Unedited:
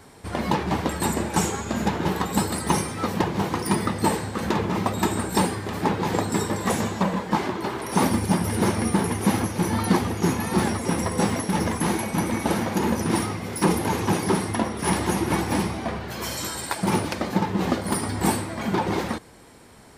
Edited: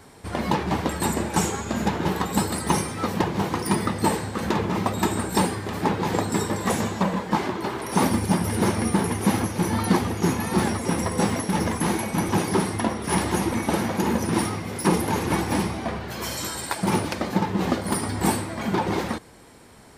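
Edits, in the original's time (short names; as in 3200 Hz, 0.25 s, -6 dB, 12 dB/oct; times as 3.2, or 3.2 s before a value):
14.04–15.27 move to 12.29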